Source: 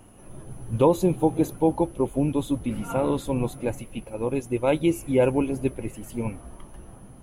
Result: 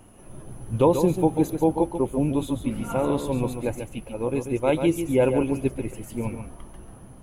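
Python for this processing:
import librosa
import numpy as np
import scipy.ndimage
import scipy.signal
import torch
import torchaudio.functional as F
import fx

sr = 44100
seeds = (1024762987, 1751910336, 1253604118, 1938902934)

y = x + 10.0 ** (-8.0 / 20.0) * np.pad(x, (int(139 * sr / 1000.0), 0))[:len(x)]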